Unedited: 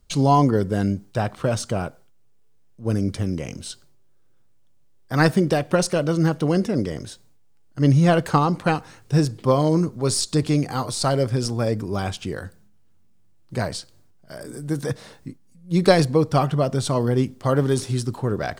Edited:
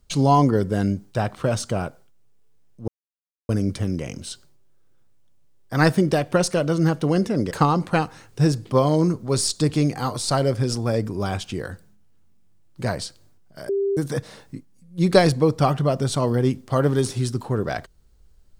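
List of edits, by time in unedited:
0:02.88: splice in silence 0.61 s
0:06.90–0:08.24: remove
0:14.42–0:14.70: beep over 396 Hz −19 dBFS

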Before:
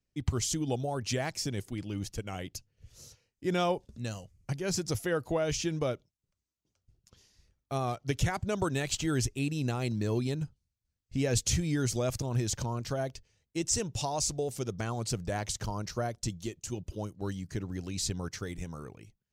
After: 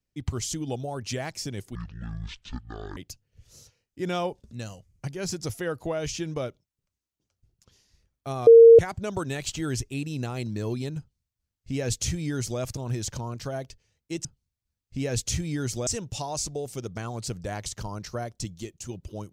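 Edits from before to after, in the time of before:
0:01.75–0:02.42: play speed 55%
0:07.92–0:08.24: beep over 460 Hz −7 dBFS
0:10.44–0:12.06: duplicate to 0:13.70

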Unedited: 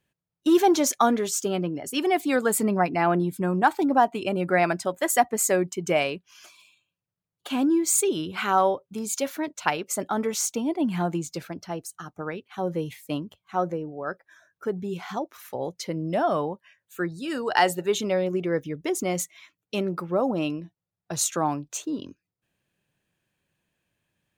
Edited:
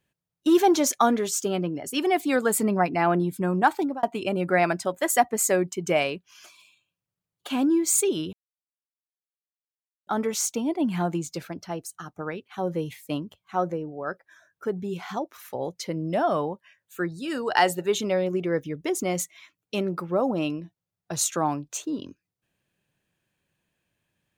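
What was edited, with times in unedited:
0:03.77–0:04.03: fade out
0:08.33–0:10.07: silence

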